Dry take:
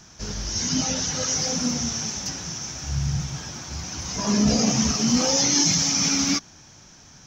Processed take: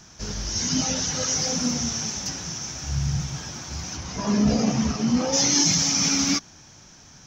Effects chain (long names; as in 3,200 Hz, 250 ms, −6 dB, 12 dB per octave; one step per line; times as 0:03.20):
0:03.96–0:05.32: low-pass filter 3,400 Hz → 1,400 Hz 6 dB per octave